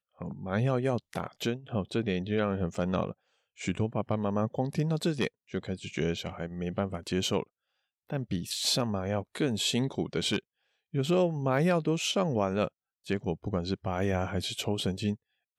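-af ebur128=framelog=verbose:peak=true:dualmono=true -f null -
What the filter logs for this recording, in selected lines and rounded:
Integrated loudness:
  I:         -28.0 LUFS
  Threshold: -38.1 LUFS
Loudness range:
  LRA:         3.3 LU
  Threshold: -48.1 LUFS
  LRA low:   -29.6 LUFS
  LRA high:  -26.3 LUFS
True peak:
  Peak:      -13.0 dBFS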